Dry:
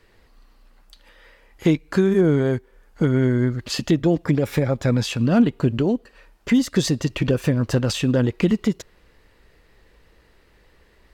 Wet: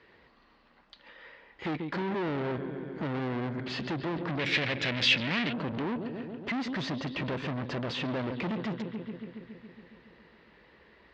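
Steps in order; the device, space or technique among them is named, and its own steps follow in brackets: analogue delay pedal into a guitar amplifier (bucket-brigade echo 139 ms, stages 4096, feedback 72%, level -16 dB; valve stage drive 30 dB, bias 0.3; cabinet simulation 100–4200 Hz, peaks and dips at 100 Hz -8 dB, 1 kHz +3 dB, 1.9 kHz +3 dB); 4.39–5.53 s: resonant high shelf 1.6 kHz +11.5 dB, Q 1.5

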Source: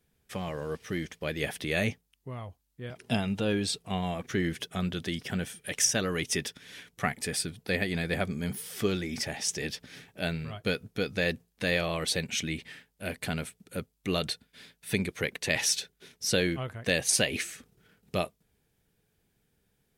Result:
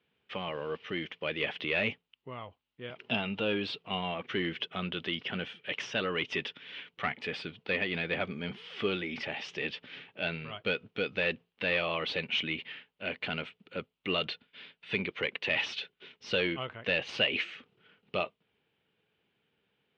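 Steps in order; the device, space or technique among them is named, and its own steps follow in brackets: overdrive pedal into a guitar cabinet (overdrive pedal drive 16 dB, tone 3.4 kHz, clips at -10 dBFS; cabinet simulation 89–3500 Hz, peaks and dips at 710 Hz -4 dB, 1.7 kHz -5 dB, 2.9 kHz +7 dB); trim -6 dB

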